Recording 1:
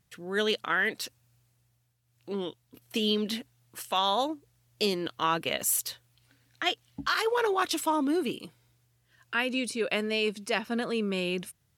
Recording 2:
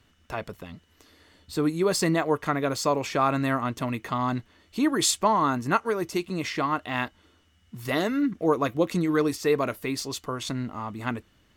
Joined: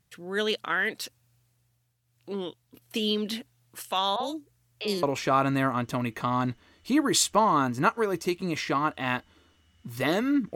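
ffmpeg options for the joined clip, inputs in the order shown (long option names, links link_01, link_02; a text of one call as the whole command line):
ffmpeg -i cue0.wav -i cue1.wav -filter_complex "[0:a]asettb=1/sr,asplit=3[link_01][link_02][link_03];[link_01]atrim=end=4.164[link_04];[link_02]atrim=start=4.16:end=5.03,asetpts=PTS-STARTPTS,afade=type=in:duration=0.004:curve=qsin,afade=type=out:start_time=0.866:duration=0.004:curve=qsin,acrossover=split=610|3500[link_05][link_06][link_07];[link_05]adelay=40[link_08];[link_07]adelay=70[link_09];[link_08][link_06][link_09]amix=inputs=3:normalize=0,atrim=end_sample=38367[link_10];[link_03]atrim=start=5.026[link_11];[link_04][link_10]acrossfade=duration=0.004:curve1=hsin:curve2=qsin[link_12];[link_12][link_11]acrossfade=duration=0.004:curve1=qsin:curve2=hsin,apad=whole_dur=10.55,atrim=end=10.55,atrim=end=5.032[link_13];[1:a]atrim=start=2.908:end=8.43[link_14];[link_13][link_14]acrossfade=duration=0.004:curve1=hsin:curve2=hsin" out.wav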